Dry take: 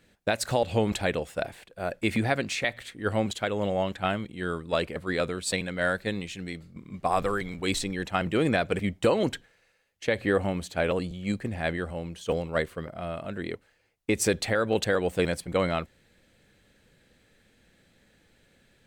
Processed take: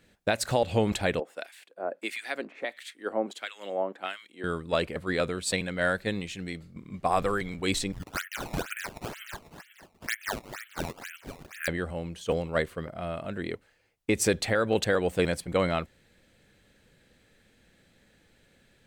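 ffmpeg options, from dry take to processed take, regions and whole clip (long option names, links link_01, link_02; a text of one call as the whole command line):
ffmpeg -i in.wav -filter_complex "[0:a]asettb=1/sr,asplit=3[link_01][link_02][link_03];[link_01]atrim=end=1.204[link_04];[link_02]atrim=start=1.2:end=4.44,asetpts=PTS-STARTPTS,afade=type=in:duration=0.004:curve=qsin,afade=type=out:start_time=3.236:duration=0.004:curve=qsin,highpass=frequency=270:width=0.5412,highpass=frequency=270:width=1.3066,acrossover=split=1400[link_05][link_06];[link_05]aeval=exprs='val(0)*(1-1/2+1/2*cos(2*PI*1.5*n/s))':channel_layout=same[link_07];[link_06]aeval=exprs='val(0)*(1-1/2-1/2*cos(2*PI*1.5*n/s))':channel_layout=same[link_08];[link_07][link_08]amix=inputs=2:normalize=0[link_09];[link_03]atrim=start=4.436[link_10];[link_04][link_09]acrossfade=duration=0.004:curve1=hsin:curve2=qsin[link_11];[link_11][link_10]acrossfade=duration=0.004:curve1=qsin:curve2=hsin,asettb=1/sr,asplit=3[link_12][link_13][link_14];[link_12]atrim=end=7.924[link_15];[link_13]atrim=start=7.92:end=11.68,asetpts=PTS-STARTPTS,afade=type=in:duration=0.004:curve=qsin,afade=type=out:start_time=3.756:duration=0.004:curve=qsin,asuperpass=centerf=2000:order=12:qfactor=1.2,asplit=7[link_16][link_17][link_18][link_19][link_20][link_21][link_22];[link_17]adelay=247,afreqshift=64,volume=-9dB[link_23];[link_18]adelay=494,afreqshift=128,volume=-14.2dB[link_24];[link_19]adelay=741,afreqshift=192,volume=-19.4dB[link_25];[link_20]adelay=988,afreqshift=256,volume=-24.6dB[link_26];[link_21]adelay=1235,afreqshift=320,volume=-29.8dB[link_27];[link_22]adelay=1482,afreqshift=384,volume=-35dB[link_28];[link_16][link_23][link_24][link_25][link_26][link_27][link_28]amix=inputs=7:normalize=0,atrim=end_sample=165816,acrusher=samples=16:mix=1:aa=0.000001:lfo=1:lforange=25.6:lforate=2.1[link_29];[link_14]atrim=start=11.676[link_30];[link_15][link_29]acrossfade=duration=0.004:curve1=hsin:curve2=qsin[link_31];[link_31][link_30]acrossfade=duration=0.004:curve1=qsin:curve2=hsin" out.wav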